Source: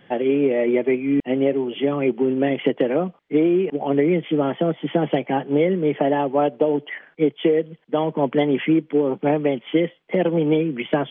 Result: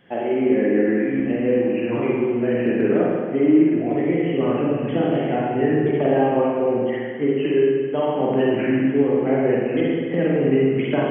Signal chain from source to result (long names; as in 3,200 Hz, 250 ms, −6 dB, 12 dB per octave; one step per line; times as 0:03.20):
pitch shifter swept by a sawtooth −3.5 semitones, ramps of 977 ms
spring reverb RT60 1.8 s, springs 42/52 ms, chirp 75 ms, DRR −5 dB
level −4.5 dB